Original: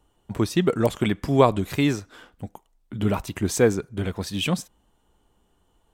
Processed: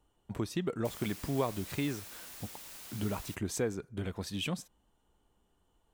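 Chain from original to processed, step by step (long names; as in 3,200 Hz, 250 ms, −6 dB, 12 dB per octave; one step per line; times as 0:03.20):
downward compressor 2 to 1, threshold −26 dBFS, peak gain reduction 9 dB
0:00.84–0:03.34: background noise white −41 dBFS
level −7.5 dB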